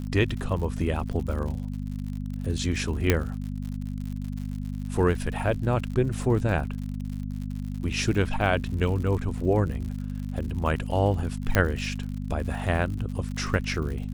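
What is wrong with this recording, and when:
surface crackle 87 per second −34 dBFS
mains hum 50 Hz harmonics 5 −32 dBFS
0:03.10: click −5 dBFS
0:11.55: click −7 dBFS

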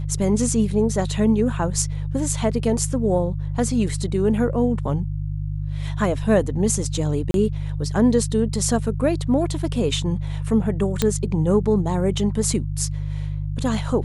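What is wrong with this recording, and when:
mains hum 50 Hz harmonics 3 −26 dBFS
0:07.31–0:07.34: drop-out 32 ms
0:11.02: click −5 dBFS

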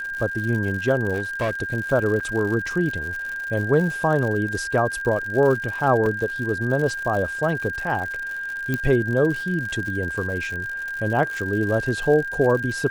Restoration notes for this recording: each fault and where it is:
surface crackle 110 per second −29 dBFS
whistle 1,600 Hz −27 dBFS
0:01.14–0:01.51: clipping −19 dBFS
0:02.20–0:02.21: drop-out 5.9 ms
0:06.06: drop-out 3 ms
0:08.74: click −11 dBFS

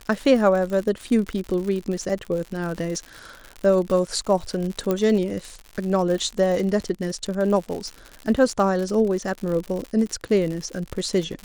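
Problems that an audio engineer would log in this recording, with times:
surface crackle 97 per second −28 dBFS
0:04.91: click −10 dBFS

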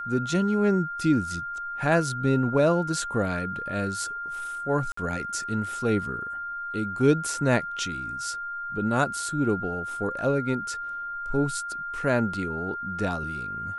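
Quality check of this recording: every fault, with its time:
whistle 1,400 Hz −31 dBFS
0:04.92–0:04.97: drop-out 54 ms

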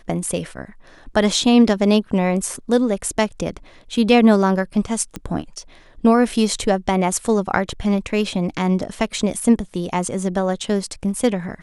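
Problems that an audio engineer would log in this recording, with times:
0:05.16: click −14 dBFS

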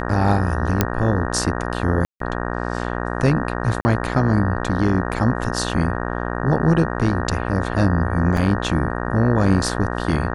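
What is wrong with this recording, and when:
mains buzz 60 Hz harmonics 31 −25 dBFS
0:00.81: click −1 dBFS
0:02.05–0:02.20: drop-out 153 ms
0:03.81–0:03.85: drop-out 40 ms
0:08.37: drop-out 3 ms

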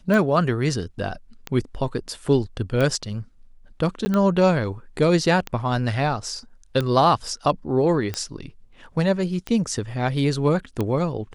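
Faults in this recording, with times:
scratch tick 45 rpm −12 dBFS
0:04.05–0:04.06: drop-out 10 ms

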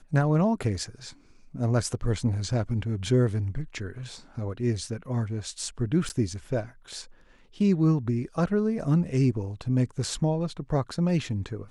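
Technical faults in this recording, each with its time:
0:06.09–0:06.10: drop-out 9.3 ms

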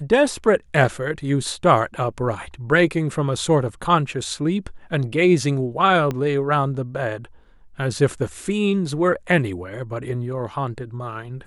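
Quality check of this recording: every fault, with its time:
0:06.11: click −13 dBFS

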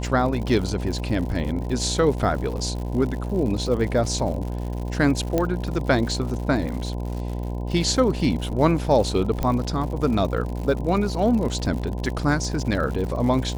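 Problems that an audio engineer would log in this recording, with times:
mains buzz 60 Hz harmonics 17 −28 dBFS
surface crackle 120 per second −31 dBFS
0:05.38: click −9 dBFS
0:09.43: click −12 dBFS

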